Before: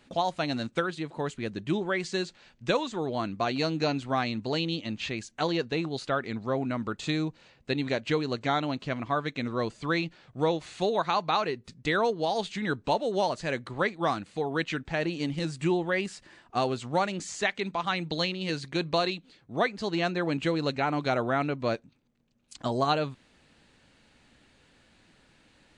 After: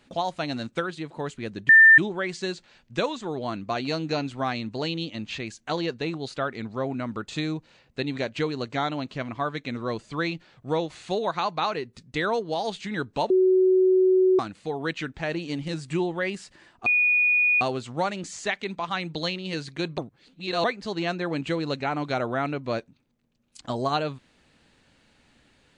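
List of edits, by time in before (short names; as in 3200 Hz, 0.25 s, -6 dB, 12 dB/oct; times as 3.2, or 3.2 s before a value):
1.69 add tone 1790 Hz -9 dBFS 0.29 s
13.01–14.1 bleep 373 Hz -15.5 dBFS
16.57 add tone 2460 Hz -17.5 dBFS 0.75 s
18.94–19.6 reverse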